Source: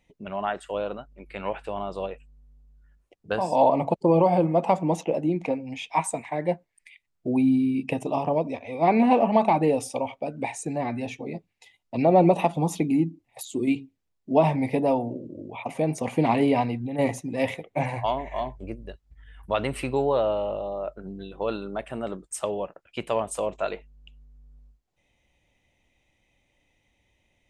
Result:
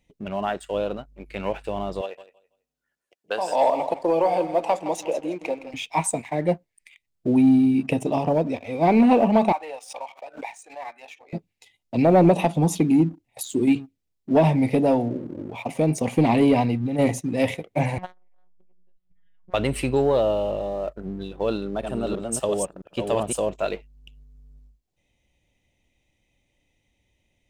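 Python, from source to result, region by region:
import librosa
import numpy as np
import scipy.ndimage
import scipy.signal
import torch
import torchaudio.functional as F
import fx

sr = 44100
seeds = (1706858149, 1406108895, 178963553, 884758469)

y = fx.chain(x, sr, fx.highpass(hz=550.0, slope=12),
    fx.echo_feedback(ms=165, feedback_pct=26, wet_db=-12.5), at=(2.01, 5.74))
y = fx.chain(y, sr, fx.highpass(hz=900.0, slope=24),
    fx.tilt_eq(slope=-4.5),
    fx.pre_swell(db_per_s=140.0), at=(9.52, 11.33))
y = fx.chain(y, sr, fx.robotise(hz=182.0),
    fx.air_absorb(metres=240.0),
    fx.transformer_sat(knee_hz=890.0), at=(17.98, 19.54))
y = fx.chain(y, sr, fx.reverse_delay(ms=332, wet_db=-4.0),
    fx.peak_eq(hz=2100.0, db=-13.0, octaves=0.27), at=(21.49, 23.49))
y = fx.peak_eq(y, sr, hz=1200.0, db=-7.0, octaves=2.0)
y = fx.leveller(y, sr, passes=1)
y = y * 10.0 ** (2.5 / 20.0)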